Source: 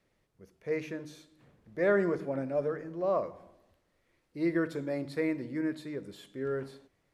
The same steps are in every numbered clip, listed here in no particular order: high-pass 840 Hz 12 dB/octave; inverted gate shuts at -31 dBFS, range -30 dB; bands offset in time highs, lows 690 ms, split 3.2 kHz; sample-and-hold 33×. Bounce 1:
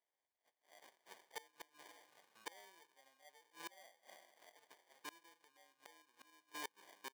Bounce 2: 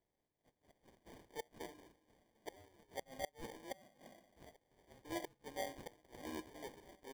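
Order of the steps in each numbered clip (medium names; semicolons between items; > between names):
bands offset in time > sample-and-hold > inverted gate > high-pass; high-pass > inverted gate > bands offset in time > sample-and-hold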